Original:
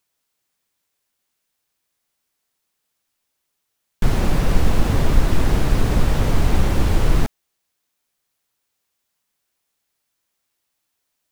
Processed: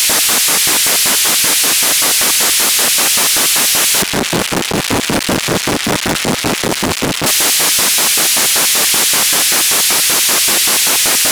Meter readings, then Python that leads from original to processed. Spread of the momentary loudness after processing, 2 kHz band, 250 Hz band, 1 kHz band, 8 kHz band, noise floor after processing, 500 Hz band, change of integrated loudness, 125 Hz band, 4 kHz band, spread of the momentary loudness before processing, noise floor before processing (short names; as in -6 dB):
6 LU, +20.0 dB, +7.5 dB, +13.5 dB, +32.5 dB, -19 dBFS, +10.5 dB, +11.5 dB, -3.0 dB, +27.0 dB, 3 LU, -76 dBFS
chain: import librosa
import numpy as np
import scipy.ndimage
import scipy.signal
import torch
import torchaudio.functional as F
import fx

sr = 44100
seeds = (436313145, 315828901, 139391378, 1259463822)

y = fx.delta_mod(x, sr, bps=64000, step_db=-12.0)
y = fx.filter_lfo_highpass(y, sr, shape='square', hz=5.2, low_hz=210.0, high_hz=2400.0, q=1.0)
y = fx.leveller(y, sr, passes=2)
y = y * 10.0 ** (3.0 / 20.0)